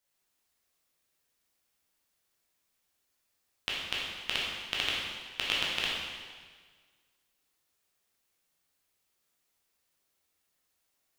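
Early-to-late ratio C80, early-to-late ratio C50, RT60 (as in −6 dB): 2.0 dB, −0.5 dB, 1.6 s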